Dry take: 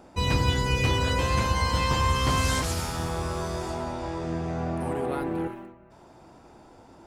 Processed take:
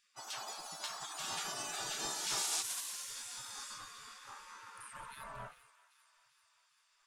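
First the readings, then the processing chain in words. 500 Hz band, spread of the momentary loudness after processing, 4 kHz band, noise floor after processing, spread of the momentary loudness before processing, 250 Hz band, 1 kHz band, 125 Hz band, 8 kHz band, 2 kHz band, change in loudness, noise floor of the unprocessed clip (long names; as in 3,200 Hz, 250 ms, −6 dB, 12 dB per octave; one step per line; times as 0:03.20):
−23.0 dB, 17 LU, −9.5 dB, −74 dBFS, 9 LU, −28.5 dB, −17.0 dB, −35.0 dB, −2.0 dB, −15.0 dB, −13.0 dB, −52 dBFS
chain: sub-octave generator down 2 octaves, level −4 dB
noise reduction from a noise print of the clip's start 9 dB
high-shelf EQ 5,100 Hz −11 dB
gate on every frequency bin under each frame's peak −25 dB weak
octave-band graphic EQ 125/250/500/1,000/2,000/8,000 Hz +5/−7/−6/+5/−7/+3 dB
delay with a high-pass on its return 393 ms, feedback 61%, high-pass 1,400 Hz, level −15.5 dB
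level +6.5 dB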